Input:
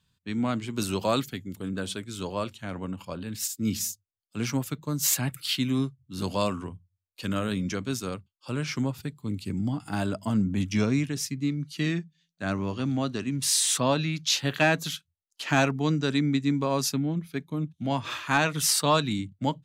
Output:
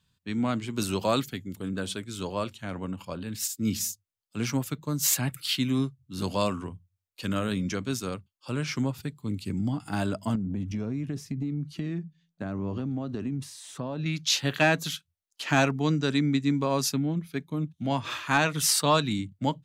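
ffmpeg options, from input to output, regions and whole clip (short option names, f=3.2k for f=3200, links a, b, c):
-filter_complex "[0:a]asettb=1/sr,asplit=3[a][b][c];[a]atrim=end=10.354[d];[b]atrim=start=10.35:end=14.06,asetpts=PTS-STARTPTS,afade=t=in:d=0.004:c=qsin,afade=t=out:st=3.706:d=0.004:c=qsin,acompressor=threshold=-34dB:ratio=16:attack=3.2:release=140:knee=1:detection=peak,tiltshelf=f=1.4k:g=8[e];[c]atrim=start=14.056[f];[d][e]acrossfade=d=0.004:c1=hsin:c2=qsin[g];[g][f]acrossfade=d=0.004:c1=qsin:c2=hsin"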